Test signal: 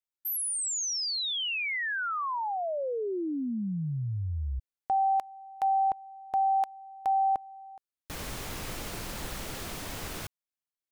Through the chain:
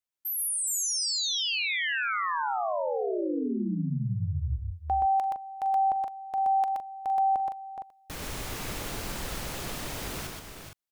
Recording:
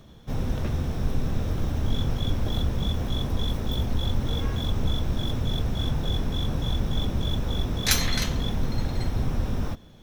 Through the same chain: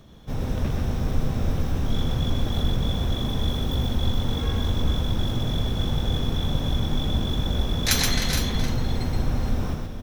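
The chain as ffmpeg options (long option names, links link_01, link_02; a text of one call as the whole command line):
ffmpeg -i in.wav -af "aecho=1:1:42|124|420|462:0.133|0.668|0.355|0.316" out.wav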